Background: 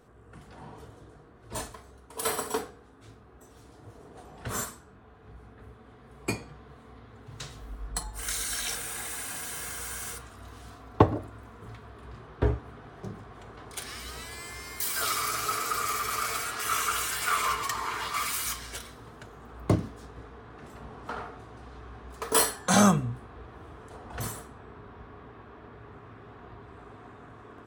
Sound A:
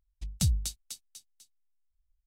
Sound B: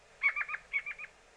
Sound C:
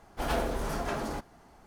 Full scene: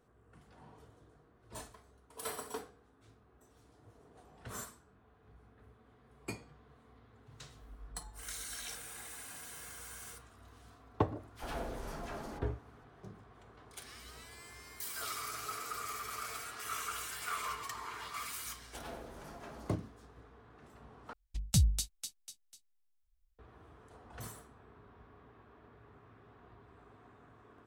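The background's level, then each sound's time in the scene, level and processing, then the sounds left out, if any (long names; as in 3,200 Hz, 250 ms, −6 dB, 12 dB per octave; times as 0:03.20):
background −11.5 dB
0:11.18: mix in C −10.5 dB + all-pass dispersion lows, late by 59 ms, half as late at 1,300 Hz
0:18.55: mix in C −16 dB + high-pass filter 58 Hz
0:21.13: overwrite with A −0.5 dB
not used: B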